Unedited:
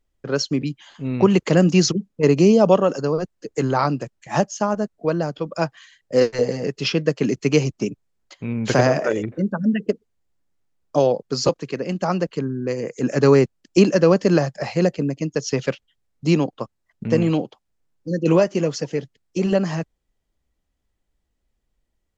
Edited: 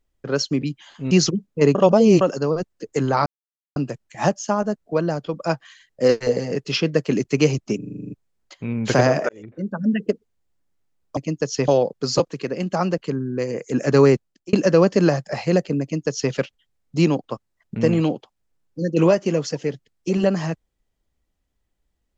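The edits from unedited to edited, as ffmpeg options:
-filter_complex "[0:a]asplit=17[s0][s1][s2][s3][s4][s5][s6][s7][s8][s9][s10][s11][s12][s13][s14][s15][s16];[s0]atrim=end=1.112[s17];[s1]atrim=start=1.728:end=2.372[s18];[s2]atrim=start=2.368:end=2.832,asetpts=PTS-STARTPTS,areverse[s19];[s3]atrim=start=2.828:end=3.88,asetpts=PTS-STARTPTS,afade=t=out:st=1.048:d=0.004:c=hsin,apad=pad_dur=0.5[s20];[s4]atrim=start=3.88:end=7.942,asetpts=PTS-STARTPTS,afade=t=in:d=0.004:c=hsin[s21];[s5]atrim=start=7.898:end=7.942[s22];[s6]atrim=start=7.898:end=7.942[s23];[s7]atrim=start=7.898:end=7.942[s24];[s8]atrim=start=7.898:end=7.942[s25];[s9]atrim=start=7.898:end=7.942[s26];[s10]atrim=start=7.898:end=7.942[s27];[s11]atrim=start=7.898:end=7.942[s28];[s12]atrim=start=7.898:end=9.09,asetpts=PTS-STARTPTS,afade=t=out:st=1.188:d=0.004:c=hsin[s29];[s13]atrim=start=9.09:end=10.972,asetpts=PTS-STARTPTS,afade=t=in:d=0.65[s30];[s14]atrim=start=15.108:end=15.622[s31];[s15]atrim=start=10.968:end=13.82,asetpts=PTS-STARTPTS,afade=t=out:st=2.472:d=0.38[s32];[s16]atrim=start=13.82,asetpts=PTS-STARTPTS,afade=t=in:d=0.004:c=hsin[s33];[s17][s18]acrossfade=d=0.004:c1=hsin:c2=hsin[s34];[s34][s19]acrossfade=d=0.004:c1=hsin:c2=hsin[s35];[s20][s21]concat=n=2:v=0:a=1[s36];[s35][s36]acrossfade=d=0.004:c1=hsin:c2=hsin[s37];[s37][s22]acrossfade=d=0.004:c1=hsin:c2=hsin[s38];[s38][s23]acrossfade=d=0.004:c1=hsin:c2=hsin[s39];[s39][s24]acrossfade=d=0.004:c1=hsin:c2=hsin[s40];[s40][s25]acrossfade=d=0.004:c1=hsin:c2=hsin[s41];[s41][s26]acrossfade=d=0.004:c1=hsin:c2=hsin[s42];[s42][s27]acrossfade=d=0.004:c1=hsin:c2=hsin[s43];[s43][s28]acrossfade=d=0.004:c1=hsin:c2=hsin[s44];[s29][s30]concat=n=2:v=0:a=1[s45];[s44][s45]acrossfade=d=0.004:c1=hsin:c2=hsin[s46];[s46][s31]acrossfade=d=0.004:c1=hsin:c2=hsin[s47];[s32][s33]concat=n=2:v=0:a=1[s48];[s47][s48]acrossfade=d=0.004:c1=hsin:c2=hsin"

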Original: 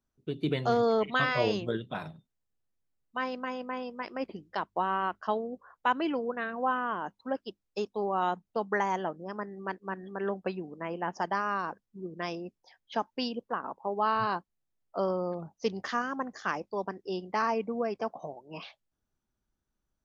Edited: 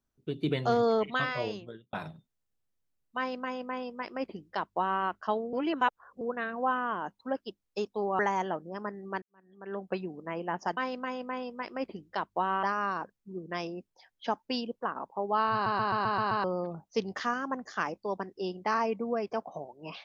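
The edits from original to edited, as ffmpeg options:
-filter_complex "[0:a]asplit=15[s0][s1][s2][s3][s4][s5][s6][s7][s8][s9][s10][s11][s12][s13][s14];[s0]atrim=end=1.93,asetpts=PTS-STARTPTS,afade=t=out:st=0.92:d=1.01[s15];[s1]atrim=start=1.93:end=5.532,asetpts=PTS-STARTPTS,afade=t=in:d=0.004:c=hsin[s16];[s2]atrim=start=5.528:end=6.212,asetpts=PTS-STARTPTS,areverse[s17];[s3]atrim=start=6.208:end=8.192[s18];[s4]atrim=start=8.728:end=9.76,asetpts=PTS-STARTPTS,afade=t=out:st=1.028:d=0.004:c=hsin[s19];[s5]atrim=start=9.76:end=11.312,asetpts=PTS-STARTPTS,afade=t=in:d=0.71:c=qua[s20];[s6]atrim=start=3.168:end=5.032[s21];[s7]atrim=start=11.308:end=14.342[s22];[s8]atrim=start=14.208:end=14.342[s23];[s9]atrim=start=14.208:end=14.342[s24];[s10]atrim=start=14.208:end=14.342[s25];[s11]atrim=start=14.208:end=14.342[s26];[s12]atrim=start=14.208:end=14.342[s27];[s13]atrim=start=14.208:end=14.342[s28];[s14]atrim=start=15.118[s29];[s15][s16]concat=n=2:v=0:a=1[s30];[s30][s17]acrossfade=d=0.004:c1=hsin:c2=hsin[s31];[s31][s18]acrossfade=d=0.004:c1=hsin:c2=hsin[s32];[s19][s20]concat=n=2:v=0:a=1[s33];[s32][s33]acrossfade=d=0.004:c1=hsin:c2=hsin[s34];[s34][s21]acrossfade=d=0.004:c1=hsin:c2=hsin[s35];[s35][s22]acrossfade=d=0.004:c1=hsin:c2=hsin[s36];[s36][s23]acrossfade=d=0.004:c1=hsin:c2=hsin[s37];[s37][s24]acrossfade=d=0.004:c1=hsin:c2=hsin[s38];[s38][s25]acrossfade=d=0.004:c1=hsin:c2=hsin[s39];[s39][s26]acrossfade=d=0.004:c1=hsin:c2=hsin[s40];[s40][s27]acrossfade=d=0.004:c1=hsin:c2=hsin[s41];[s41][s28]acrossfade=d=0.004:c1=hsin:c2=hsin[s42];[s42][s29]acrossfade=d=0.004:c1=hsin:c2=hsin"

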